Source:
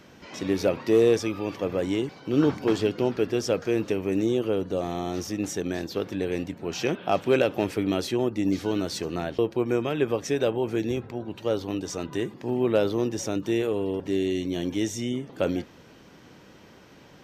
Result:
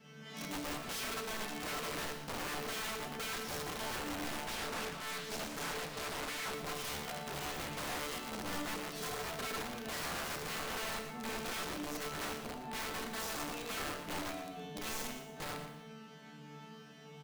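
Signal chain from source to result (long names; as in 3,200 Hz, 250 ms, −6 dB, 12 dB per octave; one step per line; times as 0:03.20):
lower of the sound and its delayed copy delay 4.5 ms
high-pass filter 91 Hz 12 dB per octave
low-shelf EQ 120 Hz +4.5 dB
hum removal 228.8 Hz, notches 31
harmonic and percussive parts rebalanced percussive −10 dB
parametric band 160 Hz +12.5 dB 0.5 octaves
downward compressor 16 to 1, threshold −33 dBFS, peak gain reduction 17.5 dB
resonators tuned to a chord D3 fifth, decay 0.73 s
wrap-around overflow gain 51.5 dB
slap from a distant wall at 20 metres, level −9 dB
reverb whose tail is shaped and stops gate 340 ms falling, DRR 6.5 dB
0:04.47–0:06.54: highs frequency-modulated by the lows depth 0.51 ms
level +15.5 dB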